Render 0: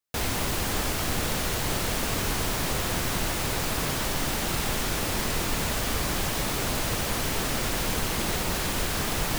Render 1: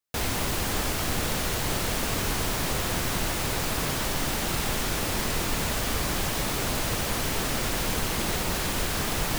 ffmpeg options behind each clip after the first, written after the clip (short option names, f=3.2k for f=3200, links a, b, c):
-af anull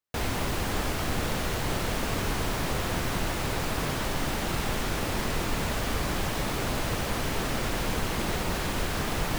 -af "highshelf=f=3.9k:g=-8"